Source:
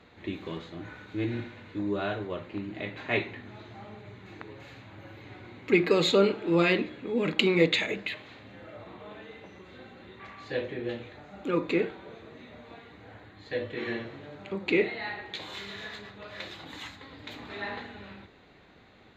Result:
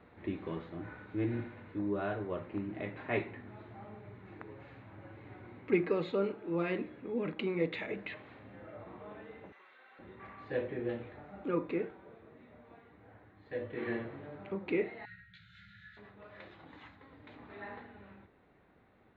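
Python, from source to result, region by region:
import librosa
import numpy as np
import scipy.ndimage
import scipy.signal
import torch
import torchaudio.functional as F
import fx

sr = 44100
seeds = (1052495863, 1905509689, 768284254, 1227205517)

y = fx.chain(x, sr, fx.highpass(hz=1200.0, slope=12),
    fx.env_flatten(amount_pct=100), at=(9.52, 9.99))
y = fx.chain(y, sr, fx.brickwall_bandstop(low_hz=200.0, high_hz=1300.0),
    fx.peak_eq(hz=2400.0, db=-7.5, octaves=1.0),
    fx.doubler(ms=17.0, db=-4.0), at=(15.05, 15.97))
y = scipy.signal.sosfilt(scipy.signal.butter(2, 1800.0, 'lowpass', fs=sr, output='sos'), y)
y = fx.rider(y, sr, range_db=4, speed_s=0.5)
y = F.gain(torch.from_numpy(y), -6.0).numpy()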